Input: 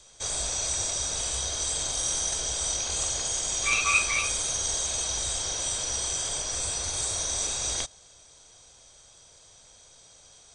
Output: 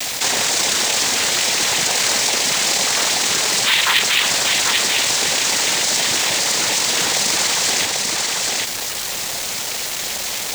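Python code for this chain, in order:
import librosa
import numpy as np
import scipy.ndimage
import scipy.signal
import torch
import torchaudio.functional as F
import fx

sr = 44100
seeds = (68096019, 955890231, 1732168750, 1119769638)

p1 = fx.tracing_dist(x, sr, depth_ms=0.068)
p2 = scipy.signal.sosfilt(scipy.signal.butter(2, 4700.0, 'lowpass', fs=sr, output='sos'), p1)
p3 = fx.dereverb_blind(p2, sr, rt60_s=1.0)
p4 = fx.highpass(p3, sr, hz=270.0, slope=6)
p5 = fx.high_shelf(p4, sr, hz=3000.0, db=6.5)
p6 = fx.noise_vocoder(p5, sr, seeds[0], bands=6)
p7 = fx.quant_companded(p6, sr, bits=4)
p8 = p7 + fx.echo_single(p7, sr, ms=791, db=-8.5, dry=0)
p9 = fx.env_flatten(p8, sr, amount_pct=70)
y = F.gain(torch.from_numpy(p9), 4.5).numpy()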